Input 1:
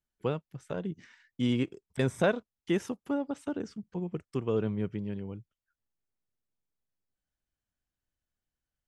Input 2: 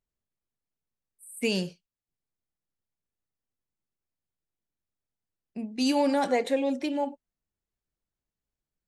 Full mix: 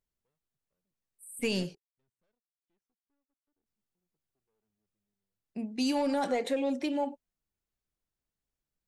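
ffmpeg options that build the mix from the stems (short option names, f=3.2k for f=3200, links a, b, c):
-filter_complex "[0:a]aeval=exprs='(tanh(35.5*val(0)+0.8)-tanh(0.8))/35.5':c=same,volume=-10.5dB[a];[1:a]asoftclip=type=tanh:threshold=-16dB,volume=-1dB,asplit=3[b][c][d];[b]atrim=end=1.75,asetpts=PTS-STARTPTS,afade=t=out:st=1.746:d=0.004:c=hsin[e];[c]atrim=start=1.75:end=3.66,asetpts=PTS-STARTPTS,volume=0[f];[d]atrim=start=3.66,asetpts=PTS-STARTPTS,afade=t=in:d=0.004:c=hsin[g];[e][f][g]concat=n=3:v=0:a=1,asplit=2[h][i];[i]apad=whole_len=391172[j];[a][j]sidechaingate=range=-37dB:threshold=-42dB:ratio=16:detection=peak[k];[k][h]amix=inputs=2:normalize=0,acompressor=threshold=-25dB:ratio=6"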